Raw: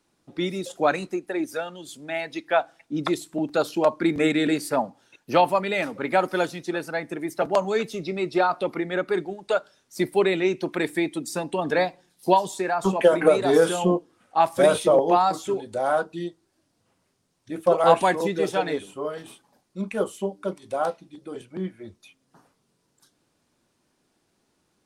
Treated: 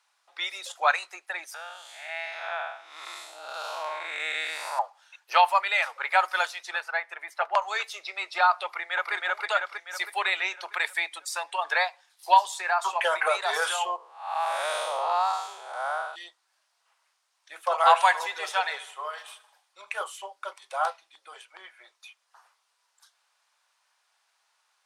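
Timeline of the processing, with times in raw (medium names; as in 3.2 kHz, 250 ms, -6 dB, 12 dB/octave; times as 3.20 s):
1.54–4.79 s: spectral blur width 257 ms
6.80–7.62 s: tone controls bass -9 dB, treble -11 dB
8.65–9.13 s: echo throw 320 ms, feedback 55%, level 0 dB
13.96–16.16 s: spectral blur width 253 ms
17.80–19.91 s: feedback delay 77 ms, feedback 56%, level -18 dB
whole clip: inverse Chebyshev high-pass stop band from 250 Hz, stop band 60 dB; treble shelf 7.6 kHz -8.5 dB; trim +4.5 dB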